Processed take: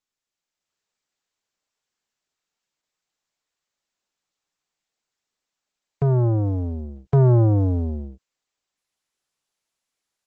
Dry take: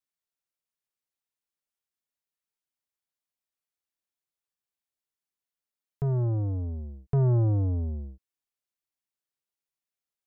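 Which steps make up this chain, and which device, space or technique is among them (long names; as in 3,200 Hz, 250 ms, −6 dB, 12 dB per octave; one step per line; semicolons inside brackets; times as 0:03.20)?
video call (high-pass filter 150 Hz 6 dB per octave; automatic gain control gain up to 9 dB; level +2 dB; Opus 12 kbit/s 48,000 Hz)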